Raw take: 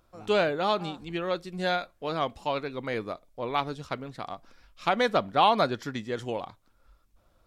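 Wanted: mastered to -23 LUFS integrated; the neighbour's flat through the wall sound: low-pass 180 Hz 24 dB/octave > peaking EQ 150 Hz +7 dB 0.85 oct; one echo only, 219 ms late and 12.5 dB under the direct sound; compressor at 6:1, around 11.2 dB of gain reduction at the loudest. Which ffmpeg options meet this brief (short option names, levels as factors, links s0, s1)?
-af "acompressor=threshold=0.0355:ratio=6,lowpass=f=180:w=0.5412,lowpass=f=180:w=1.3066,equalizer=f=150:t=o:w=0.85:g=7,aecho=1:1:219:0.237,volume=9.44"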